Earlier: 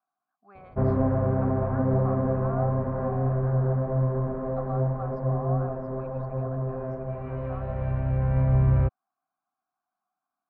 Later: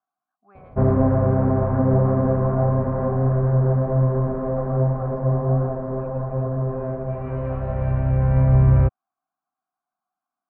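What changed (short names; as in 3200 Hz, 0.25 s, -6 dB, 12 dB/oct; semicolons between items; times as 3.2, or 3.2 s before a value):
background +6.0 dB; master: add air absorption 180 m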